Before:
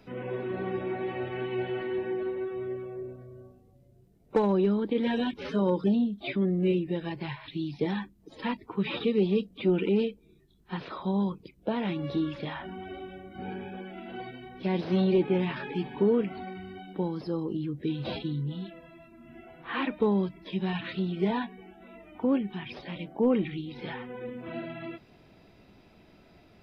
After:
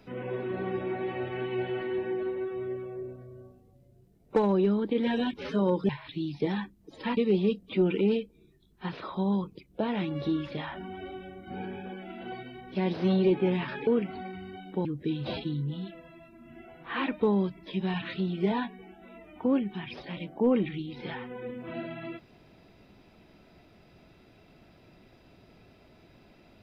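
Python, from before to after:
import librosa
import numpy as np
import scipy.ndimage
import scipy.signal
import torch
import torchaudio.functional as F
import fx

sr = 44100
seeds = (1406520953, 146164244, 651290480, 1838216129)

y = fx.edit(x, sr, fx.cut(start_s=5.89, length_s=1.39),
    fx.cut(start_s=8.56, length_s=0.49),
    fx.cut(start_s=15.75, length_s=0.34),
    fx.cut(start_s=17.07, length_s=0.57), tone=tone)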